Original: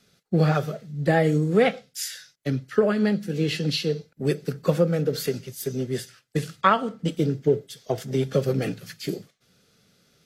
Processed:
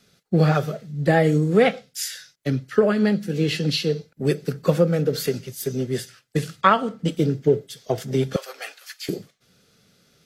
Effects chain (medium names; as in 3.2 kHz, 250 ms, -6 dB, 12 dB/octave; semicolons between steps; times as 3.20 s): 8.36–9.09 s: high-pass 780 Hz 24 dB/octave; trim +2.5 dB